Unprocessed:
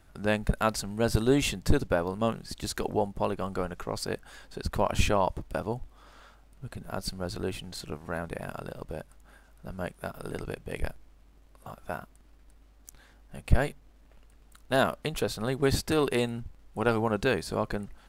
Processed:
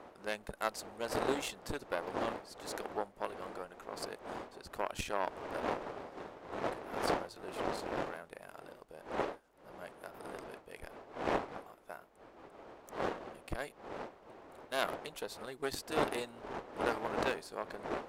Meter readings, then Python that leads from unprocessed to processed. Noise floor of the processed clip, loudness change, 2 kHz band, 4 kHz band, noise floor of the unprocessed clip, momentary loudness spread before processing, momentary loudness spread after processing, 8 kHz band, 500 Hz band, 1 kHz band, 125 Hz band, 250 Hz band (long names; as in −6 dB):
−60 dBFS, −9.0 dB, −6.5 dB, −8.0 dB, −57 dBFS, 14 LU, 16 LU, −9.0 dB, −8.0 dB, −4.5 dB, −18.5 dB, −11.5 dB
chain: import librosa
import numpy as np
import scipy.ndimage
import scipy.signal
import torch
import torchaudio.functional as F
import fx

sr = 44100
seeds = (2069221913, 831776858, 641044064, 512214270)

y = fx.dmg_wind(x, sr, seeds[0], corner_hz=610.0, level_db=-30.0)
y = fx.cheby_harmonics(y, sr, harmonics=(6, 7), levels_db=(-21, -24), full_scale_db=-5.5)
y = fx.bass_treble(y, sr, bass_db=-14, treble_db=1)
y = y * librosa.db_to_amplitude(-7.0)